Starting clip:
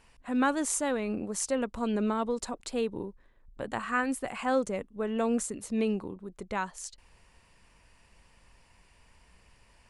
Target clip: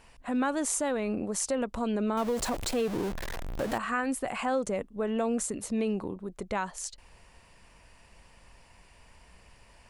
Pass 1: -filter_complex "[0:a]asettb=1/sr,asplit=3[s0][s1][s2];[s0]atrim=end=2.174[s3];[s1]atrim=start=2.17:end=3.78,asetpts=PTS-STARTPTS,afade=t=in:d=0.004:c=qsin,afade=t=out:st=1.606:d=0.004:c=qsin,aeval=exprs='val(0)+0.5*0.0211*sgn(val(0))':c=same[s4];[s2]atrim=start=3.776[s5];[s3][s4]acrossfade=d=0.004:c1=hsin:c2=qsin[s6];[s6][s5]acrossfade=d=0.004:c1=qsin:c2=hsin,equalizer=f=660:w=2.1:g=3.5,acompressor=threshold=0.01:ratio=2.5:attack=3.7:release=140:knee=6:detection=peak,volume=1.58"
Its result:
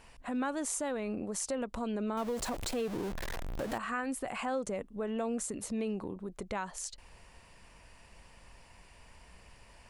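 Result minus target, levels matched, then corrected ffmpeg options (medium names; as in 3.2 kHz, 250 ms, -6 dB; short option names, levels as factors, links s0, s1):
compression: peak gain reduction +5.5 dB
-filter_complex "[0:a]asettb=1/sr,asplit=3[s0][s1][s2];[s0]atrim=end=2.174[s3];[s1]atrim=start=2.17:end=3.78,asetpts=PTS-STARTPTS,afade=t=in:d=0.004:c=qsin,afade=t=out:st=1.606:d=0.004:c=qsin,aeval=exprs='val(0)+0.5*0.0211*sgn(val(0))':c=same[s4];[s2]atrim=start=3.776[s5];[s3][s4]acrossfade=d=0.004:c1=hsin:c2=qsin[s6];[s6][s5]acrossfade=d=0.004:c1=qsin:c2=hsin,equalizer=f=660:w=2.1:g=3.5,acompressor=threshold=0.0282:ratio=2.5:attack=3.7:release=140:knee=6:detection=peak,volume=1.58"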